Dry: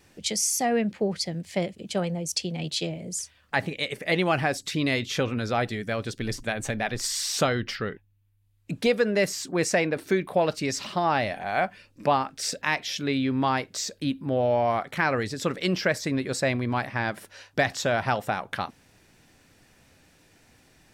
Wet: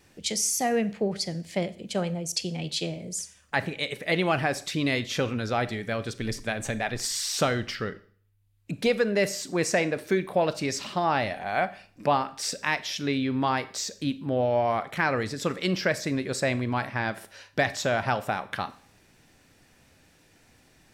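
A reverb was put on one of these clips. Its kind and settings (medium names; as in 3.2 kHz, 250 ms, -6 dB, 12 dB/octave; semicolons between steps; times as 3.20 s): Schroeder reverb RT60 0.5 s, combs from 28 ms, DRR 14.5 dB; trim -1 dB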